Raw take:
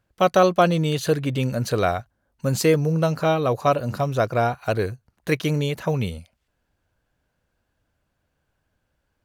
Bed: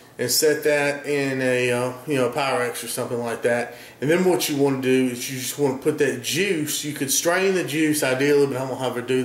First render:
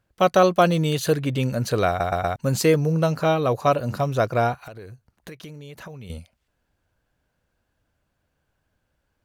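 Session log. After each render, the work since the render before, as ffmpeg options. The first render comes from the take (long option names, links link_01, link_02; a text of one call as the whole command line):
ffmpeg -i in.wav -filter_complex "[0:a]asettb=1/sr,asplit=3[link_01][link_02][link_03];[link_01]atrim=end=0.524[link_04];[link_02]atrim=start=0.52:end=1.13,asetpts=PTS-STARTPTS,afade=type=in:duration=0.004:curve=qsin,afade=type=out:start_time=0.606:duration=0.004:curve=qsin,highshelf=frequency=8800:gain=5.5[link_05];[link_03]atrim=start=1.126[link_06];[link_04][link_05]acrossfade=duration=0.004:curve1=hsin:curve2=qsin[link_07];[link_07][link_06]acrossfade=duration=0.004:curve1=qsin:curve2=hsin,asettb=1/sr,asplit=3[link_08][link_09][link_10];[link_08]atrim=end=4.664[link_11];[link_09]atrim=start=4.66:end=6.1,asetpts=PTS-STARTPTS,afade=type=in:duration=0.004:curve=qsin,afade=type=out:start_time=1.436:duration=0.004:curve=qsin,acompressor=threshold=-36dB:ratio=10:attack=3.2:release=140:knee=1:detection=peak[link_12];[link_10]atrim=start=6.096[link_13];[link_11][link_12]acrossfade=duration=0.004:curve1=hsin:curve2=qsin[link_14];[link_14][link_13]acrossfade=duration=0.004:curve1=qsin:curve2=hsin,asplit=5[link_15][link_16][link_17][link_18][link_19];[link_15]atrim=end=2.002[link_20];[link_16]atrim=start=1.878:end=2.002[link_21];[link_17]atrim=start=1.878:end=2.002[link_22];[link_18]atrim=start=1.878:end=2.002[link_23];[link_19]atrim=start=2.358[link_24];[link_20][link_21]acrossfade=duration=0.004:curve1=hsin:curve2=hsin[link_25];[link_25][link_22]acrossfade=duration=0.004:curve1=hsin:curve2=hsin[link_26];[link_26][link_23]acrossfade=duration=0.004:curve1=hsin:curve2=hsin[link_27];[link_27][link_24]acrossfade=duration=0.004:curve1=hsin:curve2=hsin" out.wav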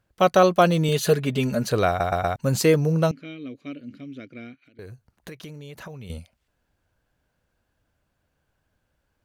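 ffmpeg -i in.wav -filter_complex "[0:a]asettb=1/sr,asplit=3[link_01][link_02][link_03];[link_01]atrim=end=0.884[link_04];[link_02]atrim=start=0.88:end=1.65,asetpts=PTS-STARTPTS,afade=type=in:duration=0.004:curve=qsin,afade=type=out:start_time=0.766:duration=0.004:curve=qsin,aecho=1:1:4.8:0.65,atrim=end_sample=33957[link_05];[link_03]atrim=start=1.646[link_06];[link_04][link_05]acrossfade=duration=0.004:curve1=hsin:curve2=qsin[link_07];[link_07][link_06]acrossfade=duration=0.004:curve1=qsin:curve2=hsin,asettb=1/sr,asplit=3[link_08][link_09][link_10];[link_08]atrim=end=3.114[link_11];[link_09]atrim=start=3.11:end=4.79,asetpts=PTS-STARTPTS,afade=type=in:duration=0.004:curve=qsin,afade=type=out:start_time=1.676:duration=0.004:curve=qsin,asplit=3[link_12][link_13][link_14];[link_12]bandpass=frequency=270:width_type=q:width=8,volume=0dB[link_15];[link_13]bandpass=frequency=2290:width_type=q:width=8,volume=-6dB[link_16];[link_14]bandpass=frequency=3010:width_type=q:width=8,volume=-9dB[link_17];[link_15][link_16][link_17]amix=inputs=3:normalize=0[link_18];[link_10]atrim=start=4.786[link_19];[link_11][link_18]acrossfade=duration=0.004:curve1=hsin:curve2=qsin[link_20];[link_20][link_19]acrossfade=duration=0.004:curve1=qsin:curve2=hsin" out.wav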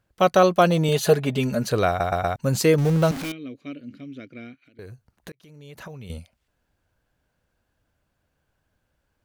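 ffmpeg -i in.wav -filter_complex "[0:a]asettb=1/sr,asplit=3[link_01][link_02][link_03];[link_01]atrim=end=0.704[link_04];[link_02]atrim=start=0.7:end=1.36,asetpts=PTS-STARTPTS,afade=type=in:duration=0.004:curve=qsin,afade=type=out:start_time=0.656:duration=0.004:curve=qsin,equalizer=frequency=760:width=1.9:gain=9[link_05];[link_03]atrim=start=1.356[link_06];[link_04][link_05]acrossfade=duration=0.004:curve1=hsin:curve2=qsin[link_07];[link_07][link_06]acrossfade=duration=0.004:curve1=qsin:curve2=hsin,asettb=1/sr,asplit=3[link_08][link_09][link_10];[link_08]atrim=end=2.784[link_11];[link_09]atrim=start=2.78:end=3.32,asetpts=PTS-STARTPTS,afade=type=in:duration=0.004:curve=qsin,afade=type=out:start_time=0.536:duration=0.004:curve=qsin,aeval=exprs='val(0)+0.5*0.0473*sgn(val(0))':channel_layout=same[link_12];[link_10]atrim=start=3.316[link_13];[link_11][link_12]acrossfade=duration=0.004:curve1=hsin:curve2=qsin[link_14];[link_14][link_13]acrossfade=duration=0.004:curve1=qsin:curve2=hsin,asplit=2[link_15][link_16];[link_15]atrim=end=5.32,asetpts=PTS-STARTPTS,afade=type=out:start_time=5.316:duration=0.004:curve=hsin[link_17];[link_16]atrim=start=5.32,asetpts=PTS-STARTPTS,afade=type=in:duration=0.5[link_18];[link_17][link_18]concat=n=2:v=0:a=1" out.wav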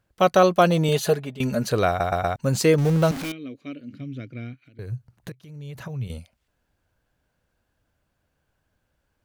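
ffmpeg -i in.wav -filter_complex "[0:a]asettb=1/sr,asplit=3[link_01][link_02][link_03];[link_01]atrim=end=2.274[link_04];[link_02]atrim=start=2.27:end=2.81,asetpts=PTS-STARTPTS,afade=type=in:duration=0.004:curve=qsin,afade=type=out:start_time=0.536:duration=0.004:curve=qsin,equalizer=frequency=12000:width=5.2:gain=-8.5[link_05];[link_03]atrim=start=2.806[link_06];[link_04][link_05]acrossfade=duration=0.004:curve1=hsin:curve2=qsin[link_07];[link_07][link_06]acrossfade=duration=0.004:curve1=qsin:curve2=hsin,asettb=1/sr,asplit=3[link_08][link_09][link_10];[link_08]atrim=end=3.934[link_11];[link_09]atrim=start=3.93:end=6.08,asetpts=PTS-STARTPTS,afade=type=in:duration=0.004:curve=qsin,afade=type=out:start_time=2.146:duration=0.004:curve=qsin,equalizer=frequency=120:width_type=o:width=0.77:gain=14.5[link_12];[link_10]atrim=start=6.076[link_13];[link_11][link_12]acrossfade=duration=0.004:curve1=hsin:curve2=qsin[link_14];[link_14][link_13]acrossfade=duration=0.004:curve1=qsin:curve2=hsin,asplit=2[link_15][link_16];[link_15]atrim=end=1.4,asetpts=PTS-STARTPTS,afade=type=out:start_time=0.94:duration=0.46:silence=0.133352[link_17];[link_16]atrim=start=1.4,asetpts=PTS-STARTPTS,afade=type=in:duration=0.004:curve=hsin:silence=0.133352[link_18];[link_17][link_18]concat=n=2:v=0:a=1" out.wav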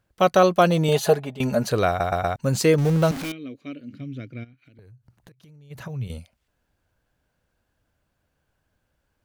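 ffmpeg -i in.wav -filter_complex "[0:a]asettb=1/sr,asplit=3[link_01][link_02][link_03];[link_01]atrim=end=0.884[link_04];[link_02]atrim=start=0.88:end=1.7,asetpts=PTS-STARTPTS,afade=type=in:duration=0.004:curve=qsin,afade=type=out:start_time=0.816:duration=0.004:curve=qsin,equalizer=frequency=780:width_type=o:width=0.89:gain=8.5[link_05];[link_03]atrim=start=1.696[link_06];[link_04][link_05]acrossfade=duration=0.004:curve1=hsin:curve2=qsin[link_07];[link_07][link_06]acrossfade=duration=0.004:curve1=qsin:curve2=hsin,asplit=3[link_08][link_09][link_10];[link_08]afade=type=out:start_time=4.43:duration=0.02[link_11];[link_09]acompressor=threshold=-46dB:ratio=12:attack=3.2:release=140:knee=1:detection=peak,afade=type=in:start_time=4.43:duration=0.02,afade=type=out:start_time=5.7:duration=0.02[link_12];[link_10]afade=type=in:start_time=5.7:duration=0.02[link_13];[link_11][link_12][link_13]amix=inputs=3:normalize=0" out.wav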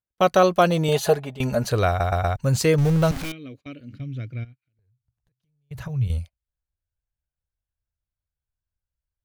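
ffmpeg -i in.wav -af "agate=range=-26dB:threshold=-43dB:ratio=16:detection=peak,asubboost=boost=8:cutoff=90" out.wav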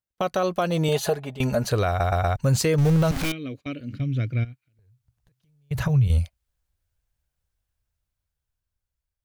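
ffmpeg -i in.wav -af "dynaudnorm=framelen=650:gausssize=7:maxgain=11dB,alimiter=limit=-13dB:level=0:latency=1:release=189" out.wav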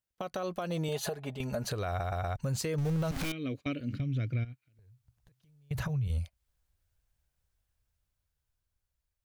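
ffmpeg -i in.wav -af "acompressor=threshold=-25dB:ratio=6,alimiter=level_in=0.5dB:limit=-24dB:level=0:latency=1:release=420,volume=-0.5dB" out.wav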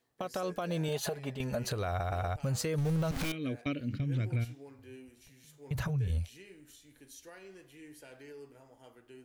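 ffmpeg -i in.wav -i bed.wav -filter_complex "[1:a]volume=-31.5dB[link_01];[0:a][link_01]amix=inputs=2:normalize=0" out.wav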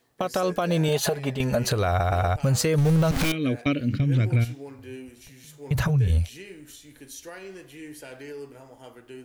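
ffmpeg -i in.wav -af "volume=10.5dB" out.wav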